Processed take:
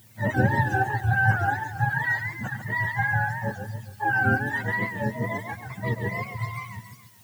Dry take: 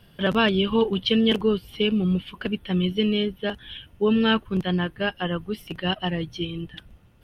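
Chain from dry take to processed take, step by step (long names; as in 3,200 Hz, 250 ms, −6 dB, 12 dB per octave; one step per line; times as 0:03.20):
frequency axis turned over on the octave scale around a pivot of 590 Hz
background noise blue −55 dBFS
feedback echo with a swinging delay time 140 ms, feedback 45%, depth 177 cents, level −7.5 dB
level −2 dB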